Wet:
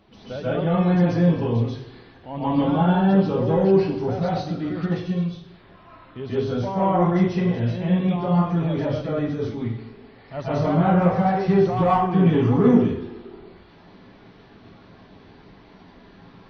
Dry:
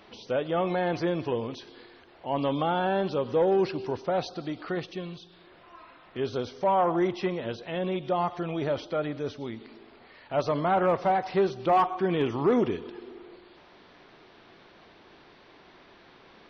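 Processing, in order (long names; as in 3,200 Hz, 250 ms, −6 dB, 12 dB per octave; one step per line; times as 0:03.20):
spectral magnitudes quantised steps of 15 dB
bass and treble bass +13 dB, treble −1 dB
convolution reverb RT60 0.55 s, pre-delay 122 ms, DRR −9 dB
level −6.5 dB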